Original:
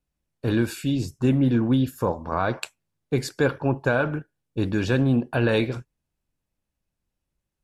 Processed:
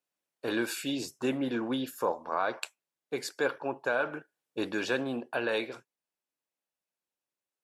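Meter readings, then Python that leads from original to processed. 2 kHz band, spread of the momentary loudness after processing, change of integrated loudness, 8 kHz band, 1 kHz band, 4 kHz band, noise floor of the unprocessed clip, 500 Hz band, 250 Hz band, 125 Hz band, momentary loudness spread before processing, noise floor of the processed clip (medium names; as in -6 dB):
-4.0 dB, 10 LU, -8.5 dB, -2.0 dB, -4.0 dB, -2.5 dB, -83 dBFS, -6.5 dB, -11.0 dB, -23.5 dB, 10 LU, under -85 dBFS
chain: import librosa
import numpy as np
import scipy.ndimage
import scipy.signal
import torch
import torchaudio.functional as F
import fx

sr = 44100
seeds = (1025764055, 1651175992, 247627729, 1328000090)

y = scipy.signal.sosfilt(scipy.signal.butter(2, 450.0, 'highpass', fs=sr, output='sos'), x)
y = fx.rider(y, sr, range_db=4, speed_s=0.5)
y = y * 10.0 ** (-2.5 / 20.0)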